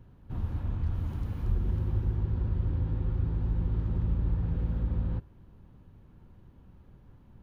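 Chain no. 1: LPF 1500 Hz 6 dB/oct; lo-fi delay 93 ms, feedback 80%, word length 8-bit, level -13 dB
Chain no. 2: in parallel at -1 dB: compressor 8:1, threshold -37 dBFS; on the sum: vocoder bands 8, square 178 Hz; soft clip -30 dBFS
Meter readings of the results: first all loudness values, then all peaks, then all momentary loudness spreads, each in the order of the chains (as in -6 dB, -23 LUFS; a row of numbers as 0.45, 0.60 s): -31.0, -36.5 LUFS; -16.0, -30.5 dBFS; 8, 18 LU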